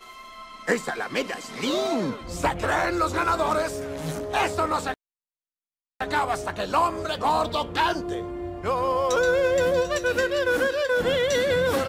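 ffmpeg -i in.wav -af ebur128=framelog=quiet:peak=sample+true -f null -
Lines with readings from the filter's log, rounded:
Integrated loudness:
  I:         -24.8 LUFS
  Threshold: -35.0 LUFS
Loudness range:
  LRA:         4.3 LU
  Threshold: -45.4 LUFS
  LRA low:   -27.4 LUFS
  LRA high:  -23.0 LUFS
Sample peak:
  Peak:       -8.8 dBFS
True peak:
  Peak:       -8.7 dBFS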